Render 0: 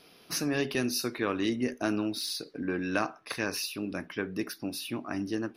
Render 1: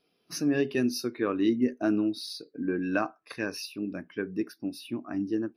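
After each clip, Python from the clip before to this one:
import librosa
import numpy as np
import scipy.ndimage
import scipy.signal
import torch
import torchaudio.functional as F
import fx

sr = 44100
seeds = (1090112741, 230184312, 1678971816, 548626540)

y = fx.spectral_expand(x, sr, expansion=1.5)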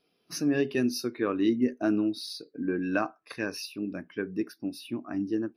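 y = x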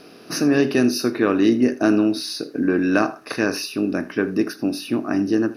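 y = fx.bin_compress(x, sr, power=0.6)
y = y + 10.0 ** (-18.5 / 20.0) * np.pad(y, (int(80 * sr / 1000.0), 0))[:len(y)]
y = y * 10.0 ** (6.5 / 20.0)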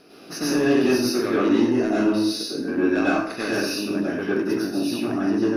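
y = 10.0 ** (-10.5 / 20.0) * np.tanh(x / 10.0 ** (-10.5 / 20.0))
y = fx.rev_plate(y, sr, seeds[0], rt60_s=0.64, hf_ratio=0.85, predelay_ms=85, drr_db=-7.0)
y = y * 10.0 ** (-7.5 / 20.0)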